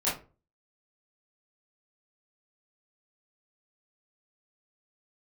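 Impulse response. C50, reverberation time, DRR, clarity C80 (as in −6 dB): 6.0 dB, 0.35 s, −10.5 dB, 14.5 dB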